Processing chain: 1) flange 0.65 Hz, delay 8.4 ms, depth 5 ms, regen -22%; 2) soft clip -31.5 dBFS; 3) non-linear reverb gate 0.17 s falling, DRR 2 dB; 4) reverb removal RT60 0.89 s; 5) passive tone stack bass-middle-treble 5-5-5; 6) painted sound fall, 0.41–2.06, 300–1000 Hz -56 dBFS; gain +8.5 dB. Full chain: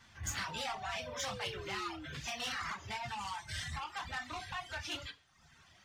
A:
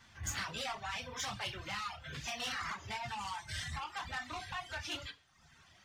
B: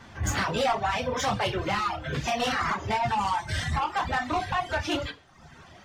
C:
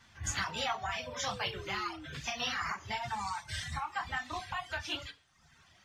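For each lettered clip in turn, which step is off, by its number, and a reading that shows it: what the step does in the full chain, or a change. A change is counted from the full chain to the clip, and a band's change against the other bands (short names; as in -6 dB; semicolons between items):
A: 6, 500 Hz band -3.5 dB; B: 5, 8 kHz band -9.0 dB; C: 2, distortion -10 dB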